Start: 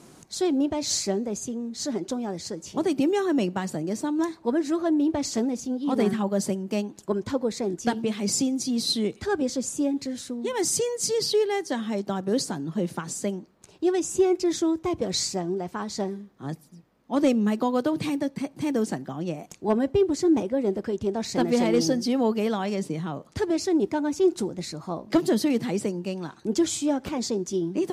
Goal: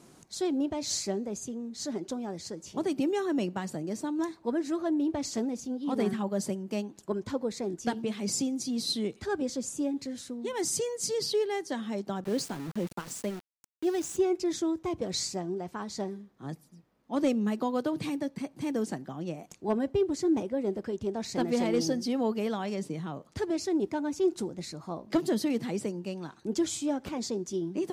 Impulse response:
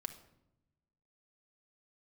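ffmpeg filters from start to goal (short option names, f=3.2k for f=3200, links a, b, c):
-filter_complex "[0:a]asettb=1/sr,asplit=3[a][b][c];[a]atrim=end=12.244[d];[b]atrim=start=12.24:end=14.17,asetpts=PTS-STARTPTS,afade=t=in:d=0.004:c=qsin,afade=t=out:st=1.926:d=0.004:c=qsin,aeval=exprs='val(0)*gte(abs(val(0)),0.0188)':c=same[e];[c]atrim=start=14.166[f];[d][e]acrossfade=d=0.004:c1=hsin:c2=qsin[g];[g][f]acrossfade=d=0.004:c1=qsin:c2=hsin,volume=-5.5dB"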